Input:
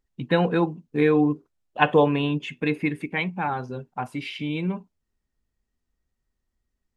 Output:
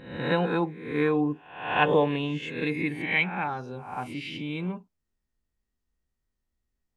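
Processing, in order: reverse spectral sustain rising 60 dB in 0.68 s; 2.96–3.44 s: dynamic bell 2.4 kHz, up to +8 dB, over -38 dBFS, Q 1.8; trim -5.5 dB

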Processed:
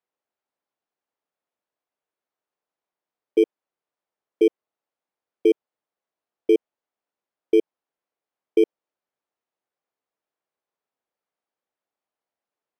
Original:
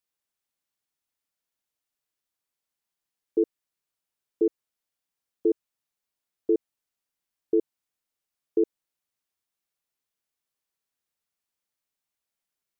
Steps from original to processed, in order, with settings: bit-reversed sample order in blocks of 16 samples; band-pass filter 590 Hz, Q 0.86; trim +8 dB

